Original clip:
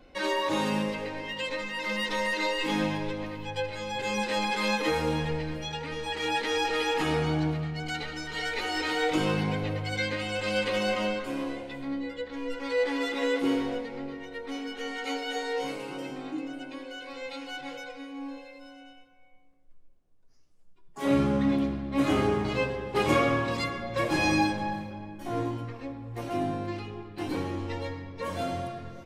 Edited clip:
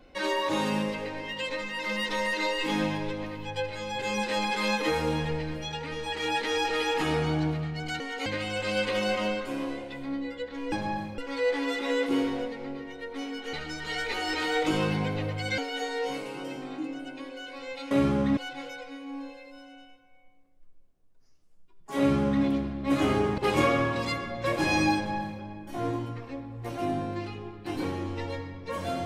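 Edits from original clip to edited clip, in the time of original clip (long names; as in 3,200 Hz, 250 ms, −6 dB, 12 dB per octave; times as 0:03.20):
0:08.00–0:10.05: swap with 0:14.86–0:15.12
0:21.06–0:21.52: duplicate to 0:17.45
0:22.46–0:22.90: remove
0:24.48–0:24.94: duplicate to 0:12.51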